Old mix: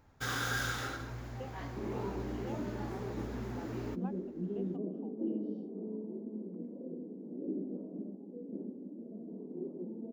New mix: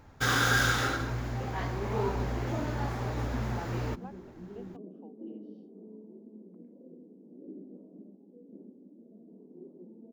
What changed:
first sound +9.5 dB; second sound -8.0 dB; master: add treble shelf 7.9 kHz -3.5 dB

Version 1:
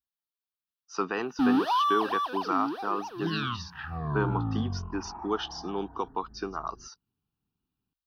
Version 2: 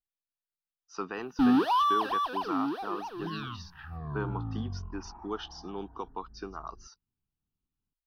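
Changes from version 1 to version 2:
speech -6.5 dB; second sound -8.5 dB; master: remove high-pass 130 Hz 6 dB/octave

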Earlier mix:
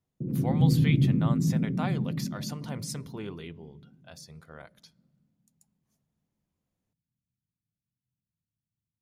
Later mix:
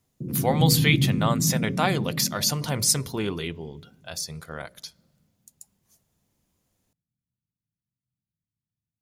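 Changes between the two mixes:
speech +10.0 dB; master: add treble shelf 3.9 kHz +10 dB

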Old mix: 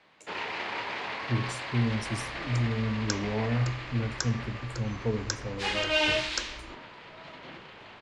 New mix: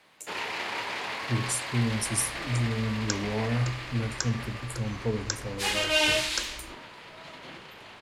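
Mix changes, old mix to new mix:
second sound: add treble shelf 4.8 kHz -11 dB; master: remove distance through air 130 m

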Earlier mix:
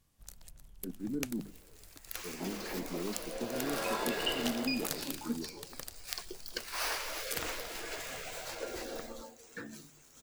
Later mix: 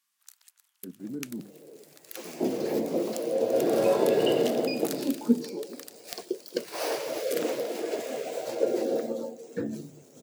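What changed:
first sound: add high-pass 1.1 kHz 24 dB/octave; second sound: add resonant low shelf 800 Hz +13.5 dB, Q 1.5

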